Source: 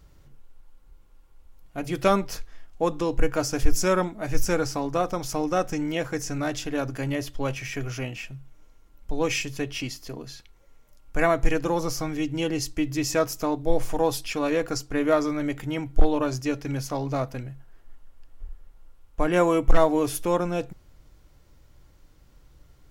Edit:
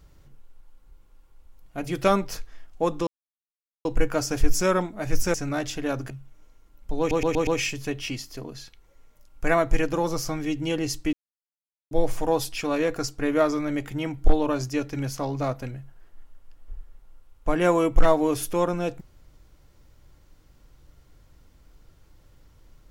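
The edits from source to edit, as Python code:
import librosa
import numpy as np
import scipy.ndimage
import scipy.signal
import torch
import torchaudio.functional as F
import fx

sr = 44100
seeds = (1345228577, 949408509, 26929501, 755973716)

y = fx.edit(x, sr, fx.insert_silence(at_s=3.07, length_s=0.78),
    fx.cut(start_s=4.56, length_s=1.67),
    fx.cut(start_s=6.99, length_s=1.31),
    fx.stutter(start_s=9.19, slice_s=0.12, count=5),
    fx.silence(start_s=12.85, length_s=0.78), tone=tone)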